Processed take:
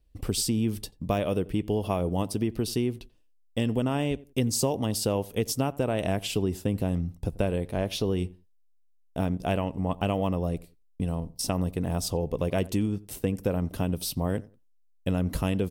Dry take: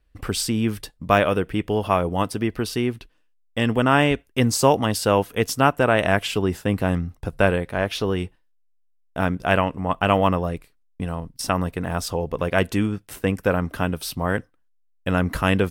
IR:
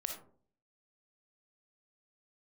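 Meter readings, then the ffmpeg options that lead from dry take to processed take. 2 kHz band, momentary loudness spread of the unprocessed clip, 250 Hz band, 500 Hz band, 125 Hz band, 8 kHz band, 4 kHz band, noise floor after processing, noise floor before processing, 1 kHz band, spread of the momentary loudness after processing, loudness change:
-15.5 dB, 10 LU, -4.5 dB, -7.0 dB, -3.5 dB, -2.5 dB, -6.0 dB, -61 dBFS, -62 dBFS, -12.0 dB, 5 LU, -6.5 dB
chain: -filter_complex "[0:a]equalizer=f=1.5k:t=o:w=1.5:g=-14.5,acompressor=threshold=-22dB:ratio=6,asplit=2[a][b];[b]adelay=88,lowpass=f=1.3k:p=1,volume=-20dB,asplit=2[c][d];[d]adelay=88,lowpass=f=1.3k:p=1,volume=0.24[e];[a][c][e]amix=inputs=3:normalize=0"

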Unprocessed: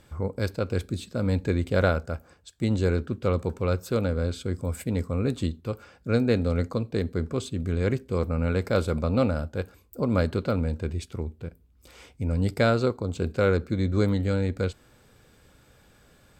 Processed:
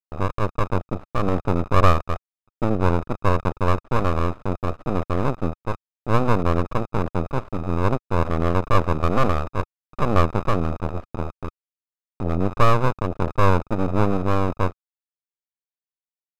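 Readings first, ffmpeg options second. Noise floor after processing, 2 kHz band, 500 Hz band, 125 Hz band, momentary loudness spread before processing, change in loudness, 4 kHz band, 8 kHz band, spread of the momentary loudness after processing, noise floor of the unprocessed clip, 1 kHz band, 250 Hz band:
under -85 dBFS, +3.0 dB, +2.0 dB, +3.0 dB, 10 LU, +3.5 dB, +1.0 dB, n/a, 10 LU, -59 dBFS, +13.0 dB, +2.0 dB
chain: -af "acrusher=bits=3:dc=4:mix=0:aa=0.000001,lowpass=f=630:t=q:w=4.9,aeval=exprs='abs(val(0))':c=same,volume=4dB"

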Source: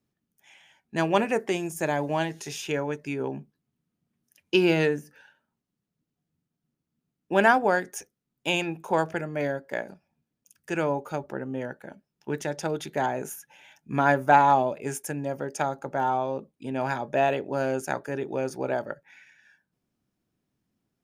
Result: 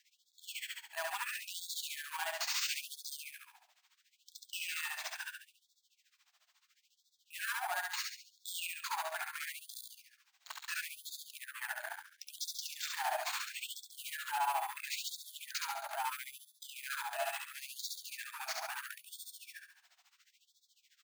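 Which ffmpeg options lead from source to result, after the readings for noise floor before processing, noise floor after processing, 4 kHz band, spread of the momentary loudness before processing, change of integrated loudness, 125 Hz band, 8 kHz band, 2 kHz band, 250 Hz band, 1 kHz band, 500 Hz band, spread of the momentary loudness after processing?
-84 dBFS, -78 dBFS, -2.0 dB, 14 LU, -13.0 dB, under -40 dB, -0.5 dB, -9.5 dB, under -40 dB, -14.5 dB, -23.0 dB, 13 LU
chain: -filter_complex "[0:a]deesser=0.6,aemphasis=mode=production:type=75fm,acompressor=threshold=-32dB:ratio=6,tremolo=f=14:d=0.87,asplit=2[a][b];[b]highpass=f=720:p=1,volume=10dB,asoftclip=type=tanh:threshold=-33.5dB[c];[a][c]amix=inputs=2:normalize=0,lowpass=f=5.7k:p=1,volume=-6dB,acrusher=samples=4:mix=1:aa=0.000001,asoftclip=type=hard:threshold=-39.5dB,asplit=2[d][e];[e]aecho=0:1:69|138|207|276|345|414:0.708|0.326|0.15|0.0689|0.0317|0.0146[f];[d][f]amix=inputs=2:normalize=0,afftfilt=real='re*gte(b*sr/1024,600*pow(3400/600,0.5+0.5*sin(2*PI*0.74*pts/sr)))':imag='im*gte(b*sr/1024,600*pow(3400/600,0.5+0.5*sin(2*PI*0.74*pts/sr)))':win_size=1024:overlap=0.75,volume=6.5dB"

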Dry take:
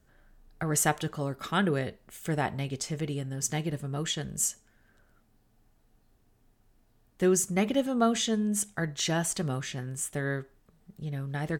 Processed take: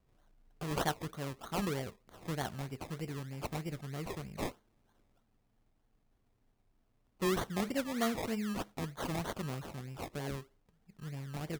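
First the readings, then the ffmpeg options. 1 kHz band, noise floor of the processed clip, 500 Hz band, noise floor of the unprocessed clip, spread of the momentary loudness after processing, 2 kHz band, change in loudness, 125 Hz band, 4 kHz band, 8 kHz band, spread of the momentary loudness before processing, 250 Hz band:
-6.0 dB, -75 dBFS, -7.5 dB, -67 dBFS, 10 LU, -8.0 dB, -8.5 dB, -7.5 dB, -9.0 dB, -17.5 dB, 10 LU, -8.0 dB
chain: -af "acrusher=samples=24:mix=1:aa=0.000001:lfo=1:lforange=14.4:lforate=3.2,volume=-8dB"

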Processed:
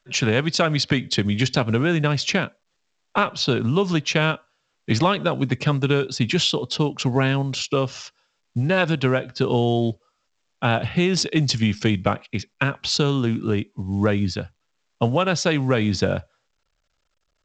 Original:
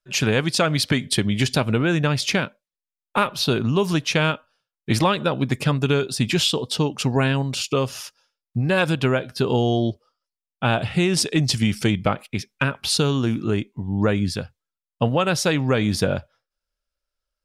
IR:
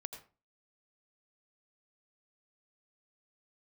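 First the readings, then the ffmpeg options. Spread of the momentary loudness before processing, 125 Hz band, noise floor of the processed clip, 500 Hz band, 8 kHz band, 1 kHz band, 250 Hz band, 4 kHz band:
7 LU, 0.0 dB, -72 dBFS, 0.0 dB, -3.0 dB, 0.0 dB, 0.0 dB, -0.5 dB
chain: -filter_complex "[0:a]acrossover=split=130|5100[a][b][c];[c]aeval=exprs='sgn(val(0))*max(abs(val(0))-0.00422,0)':c=same[d];[a][b][d]amix=inputs=3:normalize=0" -ar 16000 -c:a pcm_alaw

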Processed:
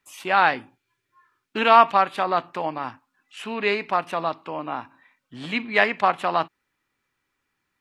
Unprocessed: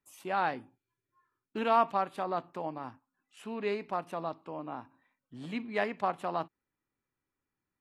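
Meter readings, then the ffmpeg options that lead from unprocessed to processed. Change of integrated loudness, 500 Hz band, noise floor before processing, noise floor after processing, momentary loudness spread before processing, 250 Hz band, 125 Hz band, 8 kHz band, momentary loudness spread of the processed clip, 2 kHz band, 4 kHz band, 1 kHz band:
+12.0 dB, +9.0 dB, under -85 dBFS, -78 dBFS, 17 LU, +6.5 dB, +6.5 dB, n/a, 18 LU, +16.0 dB, +16.0 dB, +11.5 dB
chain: -af "equalizer=f=2.5k:w=0.42:g=11,volume=6dB"

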